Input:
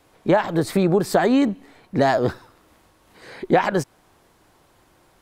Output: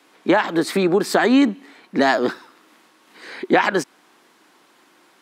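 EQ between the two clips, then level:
high-pass filter 250 Hz 24 dB per octave
parametric band 580 Hz −10 dB 1.6 octaves
high-shelf EQ 7,000 Hz −10 dB
+8.5 dB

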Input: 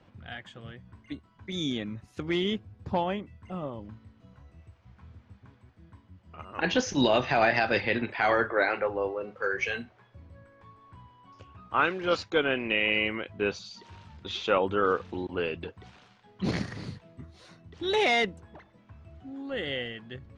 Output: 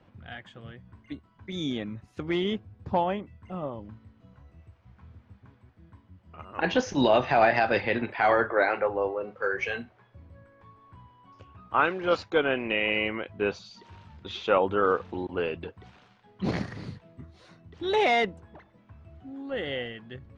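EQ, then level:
dynamic equaliser 770 Hz, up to +4 dB, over −40 dBFS, Q 1
high-shelf EQ 4,300 Hz −7.5 dB
0.0 dB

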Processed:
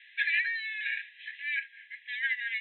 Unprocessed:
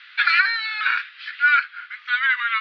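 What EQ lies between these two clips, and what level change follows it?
linear-phase brick-wall band-pass 1,600–4,100 Hz
high-frequency loss of the air 280 metres
−5.0 dB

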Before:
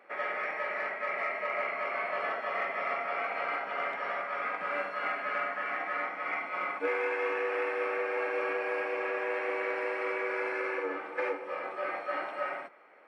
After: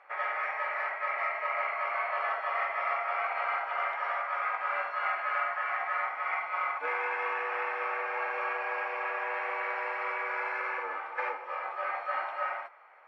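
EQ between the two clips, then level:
high-pass with resonance 880 Hz, resonance Q 1.8
high-frequency loss of the air 83 metres
0.0 dB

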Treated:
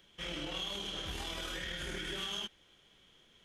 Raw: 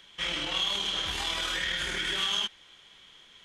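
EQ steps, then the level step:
octave-band graphic EQ 1,000/2,000/4,000/8,000 Hz −8/−7/−8/−7 dB
−1.0 dB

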